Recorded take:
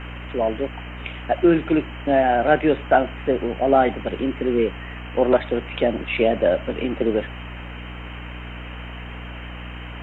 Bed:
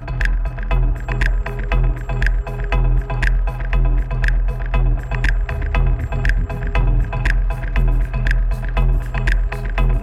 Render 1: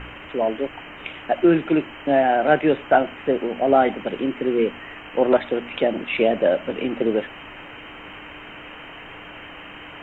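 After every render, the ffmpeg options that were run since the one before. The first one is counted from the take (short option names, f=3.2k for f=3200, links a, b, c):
-af "bandreject=f=60:t=h:w=4,bandreject=f=120:t=h:w=4,bandreject=f=180:t=h:w=4,bandreject=f=240:t=h:w=4"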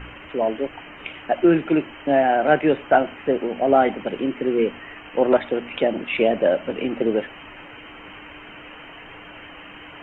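-af "afftdn=nr=6:nf=-40"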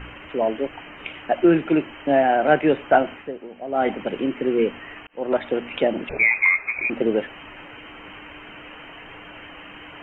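-filter_complex "[0:a]asettb=1/sr,asplit=3[a][b][c];[a]atrim=end=6.094[d];[b]atrim=start=6.09:end=6.9,asetpts=PTS-STARTPTS,afade=t=in:d=0.004:c=qsin,afade=t=out:st=0.806:d=0.004:c=qsin,lowpass=f=2.3k:t=q:w=0.5098,lowpass=f=2.3k:t=q:w=0.6013,lowpass=f=2.3k:t=q:w=0.9,lowpass=f=2.3k:t=q:w=2.563,afreqshift=-2700[e];[c]atrim=start=6.896[f];[d][e]acrossfade=d=0.004:c1=hsin:c2=qsin[g];[g][f]acrossfade=d=0.004:c1=qsin:c2=hsin,asplit=4[h][i][j][k];[h]atrim=end=3.31,asetpts=PTS-STARTPTS,afade=t=out:st=3.14:d=0.17:silence=0.237137[l];[i]atrim=start=3.31:end=3.72,asetpts=PTS-STARTPTS,volume=-12.5dB[m];[j]atrim=start=3.72:end=5.07,asetpts=PTS-STARTPTS,afade=t=in:d=0.17:silence=0.237137,afade=t=out:st=1.346:d=0.004:c=hsin[n];[k]atrim=start=5.07,asetpts=PTS-STARTPTS,afade=t=in:d=0.45[o];[l][m][n][o]concat=n=4:v=0:a=1"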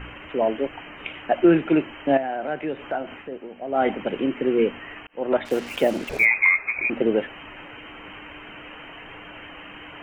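-filter_complex "[0:a]asettb=1/sr,asplit=3[a][b][c];[a]atrim=end=2.174[d];[b]atrim=start=2.17:end=3.32,asetpts=PTS-STARTPTS,afade=t=in:d=0.004:c=qsin,afade=t=out:st=1.146:d=0.004:c=qsin,acompressor=threshold=-32dB:ratio=2:attack=3.2:release=140:knee=1:detection=peak[e];[c]atrim=start=3.316[f];[d][e]acrossfade=d=0.004:c1=hsin:c2=qsin[g];[g][f]acrossfade=d=0.004:c1=qsin:c2=hsin,asettb=1/sr,asplit=3[h][i][j];[h]atrim=end=5.454[k];[i]atrim=start=5.45:end=6.25,asetpts=PTS-STARTPTS,afade=t=in:d=0.004:c=qsin,afade=t=out:st=0.796:d=0.004:c=qsin,acrusher=bits=5:mix=0:aa=0.5[l];[j]atrim=start=6.246[m];[k][l]acrossfade=d=0.004:c1=hsin:c2=qsin[n];[n][m]acrossfade=d=0.004:c1=qsin:c2=hsin"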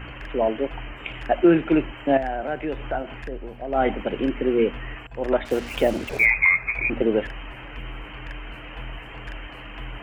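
-filter_complex "[1:a]volume=-20.5dB[a];[0:a][a]amix=inputs=2:normalize=0"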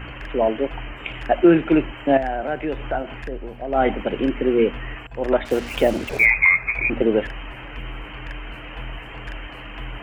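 -af "volume=2.5dB"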